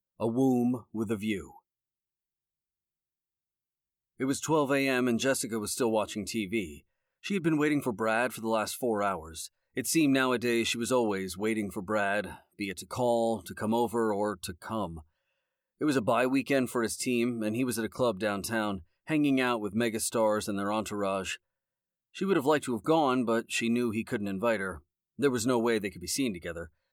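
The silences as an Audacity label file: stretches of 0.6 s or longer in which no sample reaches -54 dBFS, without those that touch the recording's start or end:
1.590000	4.190000	silence
15.020000	15.810000	silence
21.370000	22.140000	silence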